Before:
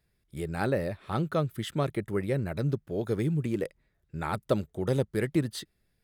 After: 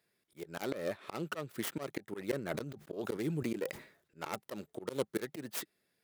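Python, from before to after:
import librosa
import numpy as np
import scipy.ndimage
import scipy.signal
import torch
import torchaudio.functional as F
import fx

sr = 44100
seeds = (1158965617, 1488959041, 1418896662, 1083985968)

y = fx.tracing_dist(x, sr, depth_ms=0.46)
y = scipy.signal.sosfilt(scipy.signal.butter(2, 280.0, 'highpass', fs=sr, output='sos'), y)
y = fx.notch(y, sr, hz=780.0, q=26.0)
y = fx.auto_swell(y, sr, attack_ms=191.0)
y = fx.sustainer(y, sr, db_per_s=110.0, at=(2.15, 4.31))
y = y * librosa.db_to_amplitude(1.0)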